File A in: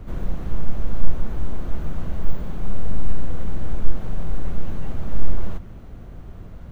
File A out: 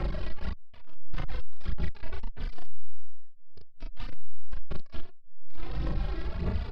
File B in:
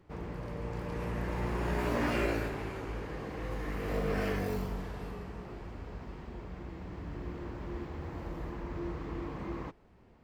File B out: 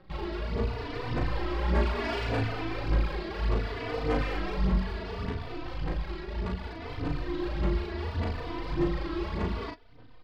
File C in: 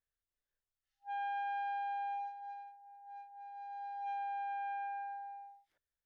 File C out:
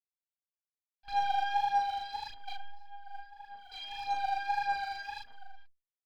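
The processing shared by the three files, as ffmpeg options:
ffmpeg -i in.wav -filter_complex "[0:a]acrossover=split=1400[link_01][link_02];[link_01]acompressor=threshold=-24dB:ratio=10[link_03];[link_03][link_02]amix=inputs=2:normalize=0,acrusher=bits=8:dc=4:mix=0:aa=0.000001,aresample=11025,volume=34.5dB,asoftclip=hard,volume=-34.5dB,aresample=44100,aphaser=in_gain=1:out_gain=1:delay=3.1:decay=0.66:speed=1.7:type=sinusoidal,aeval=exprs='0.0631*(cos(1*acos(clip(val(0)/0.0631,-1,1)))-cos(1*PI/2))+0.00316*(cos(6*acos(clip(val(0)/0.0631,-1,1)))-cos(6*PI/2))':channel_layout=same,asplit=2[link_04][link_05];[link_05]adelay=37,volume=-3dB[link_06];[link_04][link_06]amix=inputs=2:normalize=0,asplit=2[link_07][link_08];[link_08]adelay=3.3,afreqshift=0.67[link_09];[link_07][link_09]amix=inputs=2:normalize=1,volume=4.5dB" out.wav

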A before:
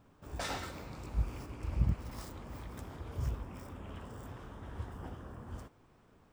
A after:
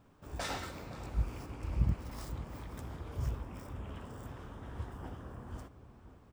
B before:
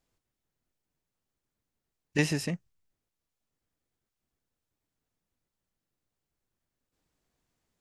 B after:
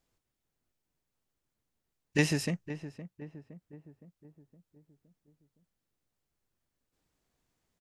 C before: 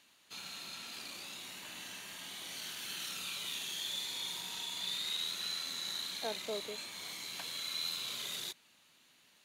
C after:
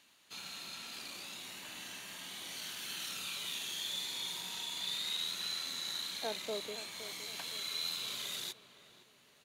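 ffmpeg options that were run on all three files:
ffmpeg -i in.wav -filter_complex "[0:a]asplit=2[link_01][link_02];[link_02]adelay=515,lowpass=frequency=1200:poles=1,volume=-12dB,asplit=2[link_03][link_04];[link_04]adelay=515,lowpass=frequency=1200:poles=1,volume=0.54,asplit=2[link_05][link_06];[link_06]adelay=515,lowpass=frequency=1200:poles=1,volume=0.54,asplit=2[link_07][link_08];[link_08]adelay=515,lowpass=frequency=1200:poles=1,volume=0.54,asplit=2[link_09][link_10];[link_10]adelay=515,lowpass=frequency=1200:poles=1,volume=0.54,asplit=2[link_11][link_12];[link_12]adelay=515,lowpass=frequency=1200:poles=1,volume=0.54[link_13];[link_01][link_03][link_05][link_07][link_09][link_11][link_13]amix=inputs=7:normalize=0" out.wav

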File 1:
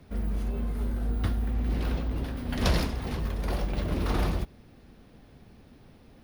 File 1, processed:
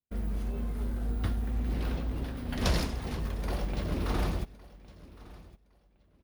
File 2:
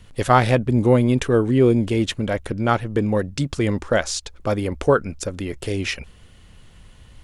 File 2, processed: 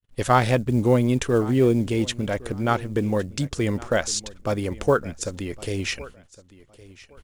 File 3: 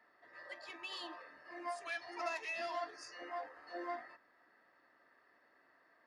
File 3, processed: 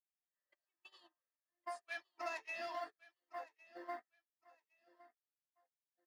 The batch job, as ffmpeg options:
ffmpeg -i in.wav -af "acrusher=bits=9:mode=log:mix=0:aa=0.000001,adynamicequalizer=threshold=0.00447:dfrequency=7100:dqfactor=1.3:tfrequency=7100:tqfactor=1.3:attack=5:release=100:ratio=0.375:range=2.5:mode=boostabove:tftype=bell,agate=range=-44dB:threshold=-42dB:ratio=16:detection=peak,aecho=1:1:1112|2224:0.1|0.022,volume=-3dB" out.wav

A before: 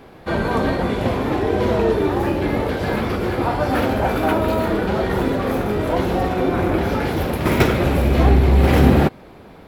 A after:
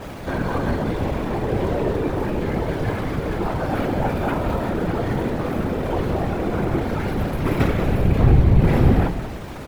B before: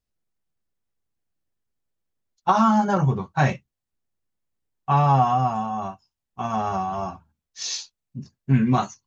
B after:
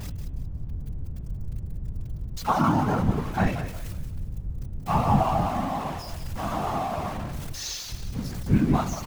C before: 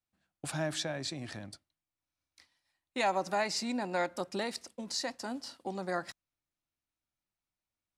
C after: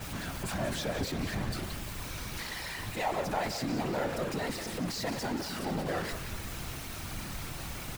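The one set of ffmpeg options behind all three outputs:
ffmpeg -i in.wav -filter_complex "[0:a]aeval=exprs='val(0)+0.5*0.0631*sgn(val(0))':channel_layout=same,lowshelf=frequency=140:gain=7.5,bandreject=frequency=146.8:width_type=h:width=4,bandreject=frequency=293.6:width_type=h:width=4,bandreject=frequency=440.4:width_type=h:width=4,bandreject=frequency=587.2:width_type=h:width=4,bandreject=frequency=734:width_type=h:width=4,bandreject=frequency=880.8:width_type=h:width=4,bandreject=frequency=1027.6:width_type=h:width=4,bandreject=frequency=1174.4:width_type=h:width=4,bandreject=frequency=1321.2:width_type=h:width=4,bandreject=frequency=1468:width_type=h:width=4,bandreject=frequency=1614.8:width_type=h:width=4,bandreject=frequency=1761.6:width_type=h:width=4,bandreject=frequency=1908.4:width_type=h:width=4,bandreject=frequency=2055.2:width_type=h:width=4,bandreject=frequency=2202:width_type=h:width=4,bandreject=frequency=2348.8:width_type=h:width=4,bandreject=frequency=2495.6:width_type=h:width=4,bandreject=frequency=2642.4:width_type=h:width=4,bandreject=frequency=2789.2:width_type=h:width=4,bandreject=frequency=2936:width_type=h:width=4,bandreject=frequency=3082.8:width_type=h:width=4,bandreject=frequency=3229.6:width_type=h:width=4,bandreject=frequency=3376.4:width_type=h:width=4,bandreject=frequency=3523.2:width_type=h:width=4,bandreject=frequency=3670:width_type=h:width=4,afftfilt=real='hypot(re,im)*cos(2*PI*random(0))':imag='hypot(re,im)*sin(2*PI*random(1))':win_size=512:overlap=0.75,asplit=5[link_01][link_02][link_03][link_04][link_05];[link_02]adelay=181,afreqshift=-59,volume=-10.5dB[link_06];[link_03]adelay=362,afreqshift=-118,volume=-20.1dB[link_07];[link_04]adelay=543,afreqshift=-177,volume=-29.8dB[link_08];[link_05]adelay=724,afreqshift=-236,volume=-39.4dB[link_09];[link_01][link_06][link_07][link_08][link_09]amix=inputs=5:normalize=0,adynamicequalizer=threshold=0.00501:dfrequency=3300:dqfactor=0.7:tfrequency=3300:tqfactor=0.7:attack=5:release=100:ratio=0.375:range=3:mode=cutabove:tftype=highshelf,volume=-1dB" out.wav

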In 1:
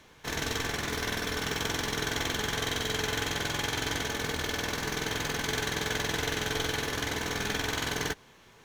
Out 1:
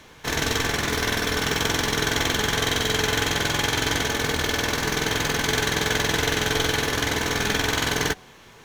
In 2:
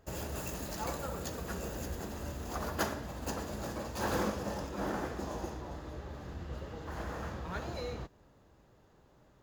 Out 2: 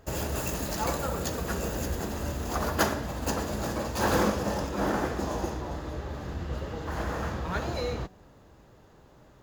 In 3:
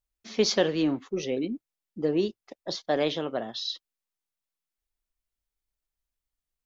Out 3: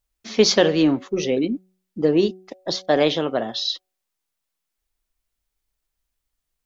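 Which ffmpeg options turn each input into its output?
ffmpeg -i in.wav -af "bandreject=frequency=186.5:width_type=h:width=4,bandreject=frequency=373:width_type=h:width=4,bandreject=frequency=559.5:width_type=h:width=4,bandreject=frequency=746:width_type=h:width=4,volume=8dB" out.wav

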